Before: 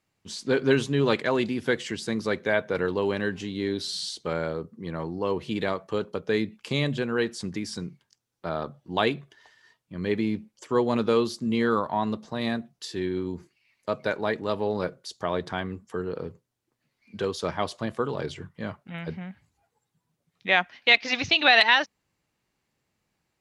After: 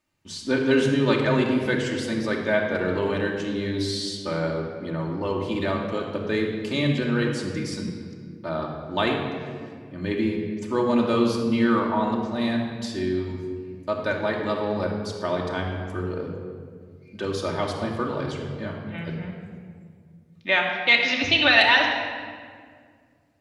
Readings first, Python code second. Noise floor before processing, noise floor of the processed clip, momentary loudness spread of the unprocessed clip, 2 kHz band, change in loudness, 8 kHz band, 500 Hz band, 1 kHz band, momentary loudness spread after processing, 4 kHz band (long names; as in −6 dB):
−79 dBFS, −52 dBFS, 15 LU, +2.5 dB, +2.0 dB, +1.0 dB, +1.5 dB, +1.5 dB, 15 LU, +1.5 dB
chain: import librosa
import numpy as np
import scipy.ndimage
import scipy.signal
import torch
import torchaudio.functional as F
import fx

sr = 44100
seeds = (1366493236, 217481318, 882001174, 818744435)

y = fx.room_shoebox(x, sr, seeds[0], volume_m3=3400.0, walls='mixed', distance_m=2.6)
y = F.gain(torch.from_numpy(y), -1.5).numpy()